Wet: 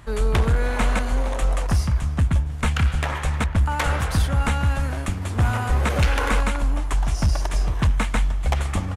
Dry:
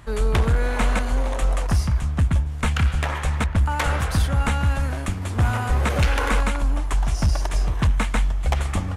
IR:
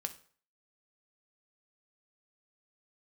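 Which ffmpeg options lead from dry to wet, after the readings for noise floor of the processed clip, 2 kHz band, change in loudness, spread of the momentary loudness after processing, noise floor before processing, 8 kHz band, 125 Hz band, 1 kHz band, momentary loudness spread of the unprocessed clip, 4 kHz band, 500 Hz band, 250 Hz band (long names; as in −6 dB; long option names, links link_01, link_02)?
−29 dBFS, 0.0 dB, 0.0 dB, 4 LU, −28 dBFS, 0.0 dB, 0.0 dB, 0.0 dB, 4 LU, 0.0 dB, 0.0 dB, 0.0 dB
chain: -af "aecho=1:1:313:0.0794"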